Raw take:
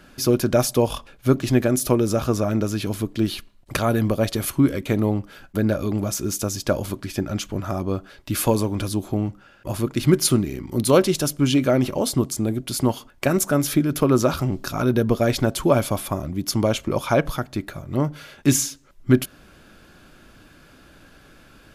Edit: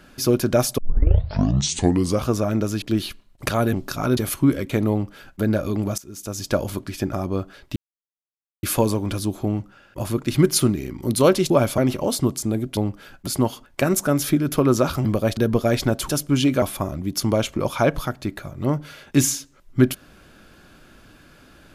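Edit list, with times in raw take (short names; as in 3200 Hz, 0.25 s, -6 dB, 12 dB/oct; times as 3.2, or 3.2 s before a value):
0.78 tape start 1.50 s
2.82–3.1 cut
4.01–4.33 swap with 14.49–14.93
5.07–5.57 copy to 12.71
6.14–6.61 fade in quadratic, from -16.5 dB
7.29–7.69 cut
8.32 insert silence 0.87 s
11.19–11.72 swap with 15.65–15.93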